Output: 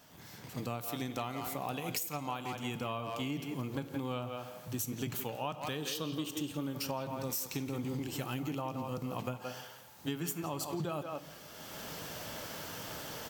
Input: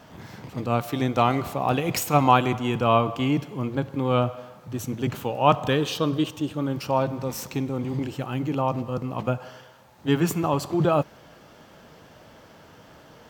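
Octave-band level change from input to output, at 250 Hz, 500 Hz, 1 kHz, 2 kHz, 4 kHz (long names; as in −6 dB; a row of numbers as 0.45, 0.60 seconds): −12.5, −15.0, −16.0, −11.0, −7.5 decibels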